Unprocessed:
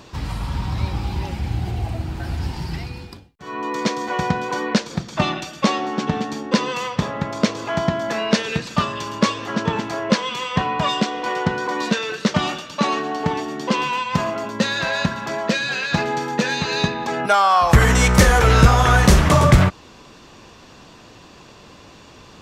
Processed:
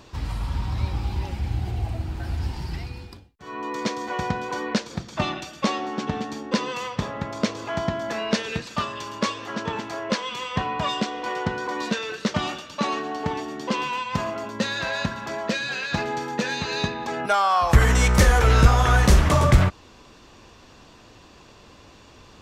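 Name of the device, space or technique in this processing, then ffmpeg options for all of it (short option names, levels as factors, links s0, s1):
low shelf boost with a cut just above: -filter_complex "[0:a]asettb=1/sr,asplit=3[s0][s1][s2];[s0]atrim=end=8.624[s3];[s1]atrim=start=8.62:end=10.33,asetpts=PTS-STARTPTS,afade=t=in:d=0.004:c=qsin,afade=t=out:st=1.706:d=0.004:c=qsin,lowshelf=f=230:g=-6[s4];[s2]atrim=start=10.326[s5];[s3][s4]acrossfade=d=0.004:c1=hsin:c2=qsin[s6];[s6][s5]acrossfade=d=0.004:c1=qsin:c2=hsin,lowshelf=f=97:g=6,equalizer=f=160:t=o:w=0.62:g=-4.5,volume=0.562"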